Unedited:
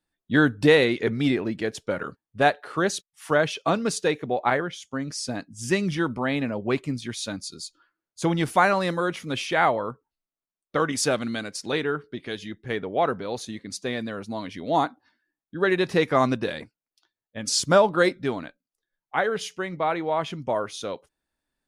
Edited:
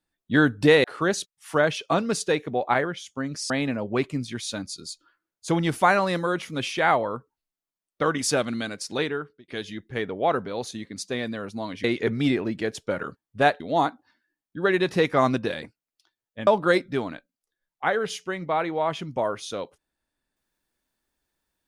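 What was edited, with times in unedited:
0.84–2.60 s: move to 14.58 s
5.26–6.24 s: delete
11.75–12.22 s: fade out
17.45–17.78 s: delete

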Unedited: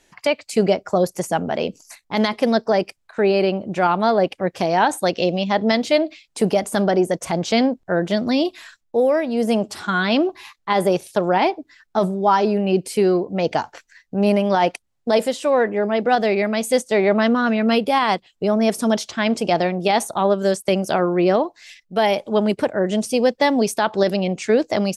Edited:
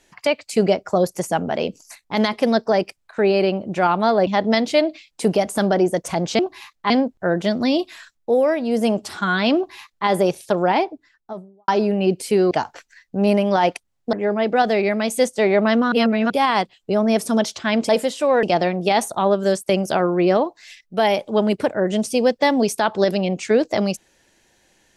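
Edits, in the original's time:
4.27–5.44 s: delete
10.22–10.73 s: copy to 7.56 s
11.26–12.34 s: studio fade out
13.17–13.50 s: delete
15.12–15.66 s: move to 19.42 s
17.45–17.83 s: reverse

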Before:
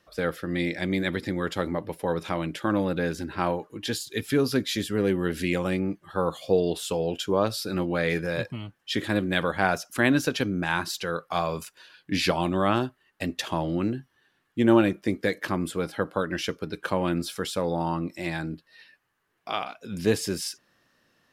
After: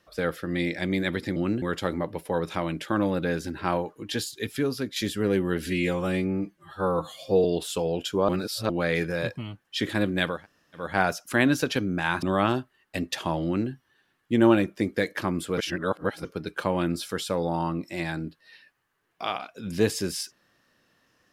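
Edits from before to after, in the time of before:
3.97–4.70 s: fade out, to -8 dB
5.40–6.59 s: stretch 1.5×
7.43–7.84 s: reverse
9.49 s: insert room tone 0.50 s, crossfade 0.24 s
10.87–12.49 s: delete
13.71–13.97 s: copy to 1.36 s
15.84–16.51 s: reverse

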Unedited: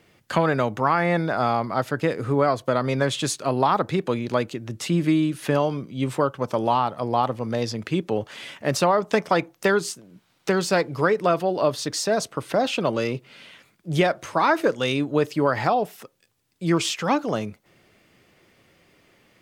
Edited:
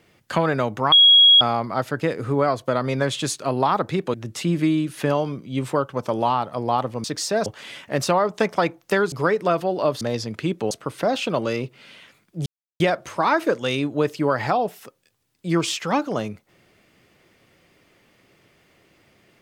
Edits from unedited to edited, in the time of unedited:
0.92–1.41 s: bleep 3.31 kHz -8.5 dBFS
4.14–4.59 s: delete
7.49–8.19 s: swap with 11.80–12.22 s
9.85–10.91 s: delete
13.97 s: insert silence 0.34 s

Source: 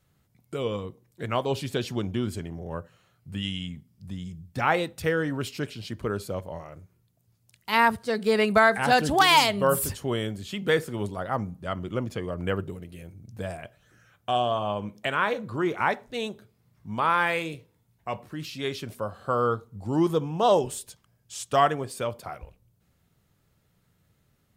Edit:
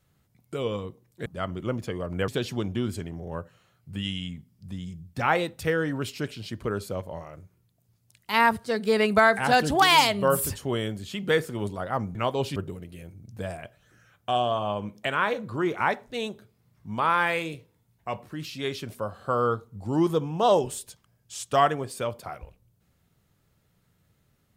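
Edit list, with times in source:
1.26–1.67 s: swap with 11.54–12.56 s

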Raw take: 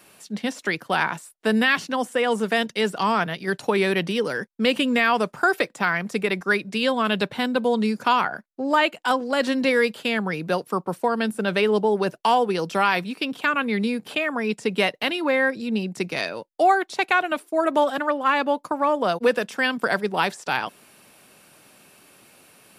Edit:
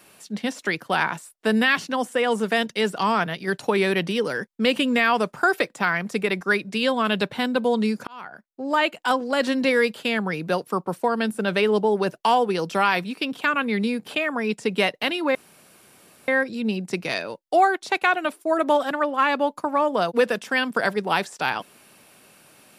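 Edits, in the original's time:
8.07–8.94 s: fade in
15.35 s: insert room tone 0.93 s

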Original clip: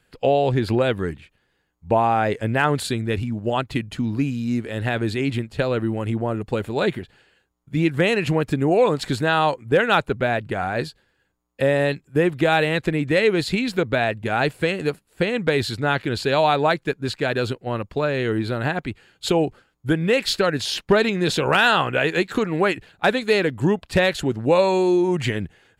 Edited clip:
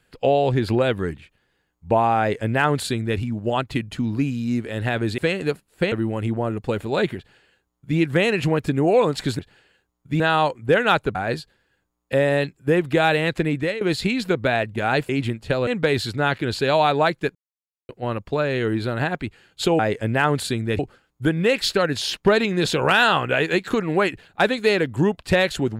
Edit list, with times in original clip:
2.19–3.19 s: copy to 19.43 s
5.18–5.76 s: swap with 14.57–15.31 s
7.01–7.82 s: copy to 9.23 s
10.18–10.63 s: delete
13.03–13.29 s: fade out, to -18.5 dB
16.99–17.53 s: mute

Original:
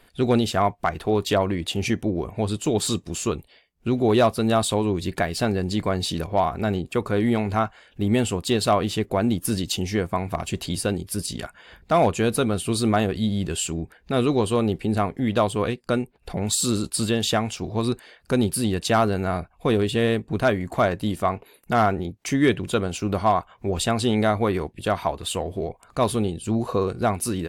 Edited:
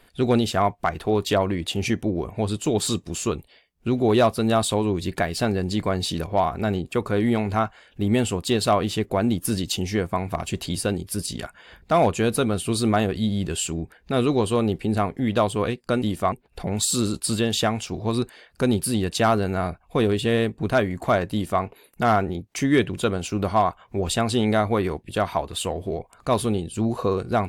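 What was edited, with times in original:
21.02–21.32 s: copy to 16.02 s

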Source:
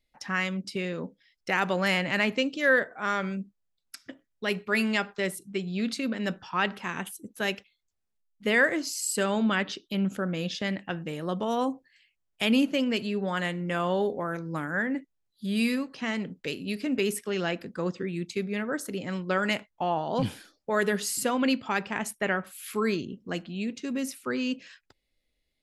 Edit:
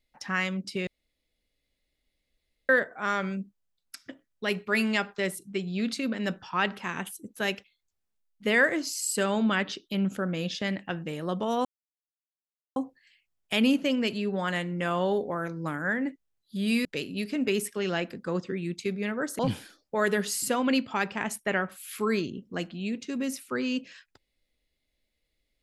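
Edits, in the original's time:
0.87–2.69 s: room tone
11.65 s: insert silence 1.11 s
15.74–16.36 s: delete
18.90–20.14 s: delete

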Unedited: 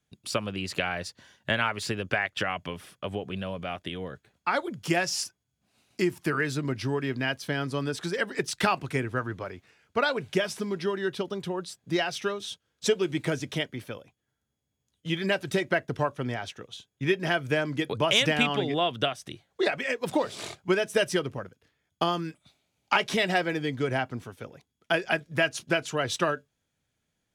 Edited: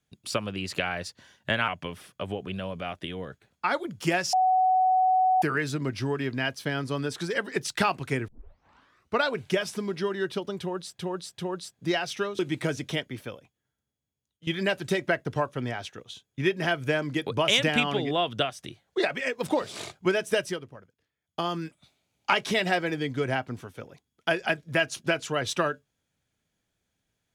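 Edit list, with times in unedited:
1.68–2.51 s: delete
5.16–6.25 s: bleep 747 Hz -18.5 dBFS
9.11 s: tape start 0.90 s
11.43–11.82 s: loop, 3 plays
12.44–13.02 s: delete
13.94–15.10 s: fade out, to -13.5 dB
20.93–22.22 s: dip -11 dB, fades 0.35 s

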